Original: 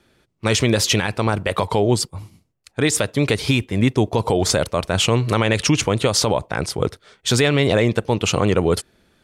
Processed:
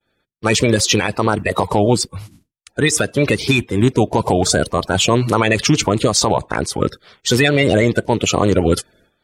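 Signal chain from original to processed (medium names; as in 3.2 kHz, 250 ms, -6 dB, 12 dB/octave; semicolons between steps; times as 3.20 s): coarse spectral quantiser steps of 30 dB; expander -51 dBFS; trim +3.5 dB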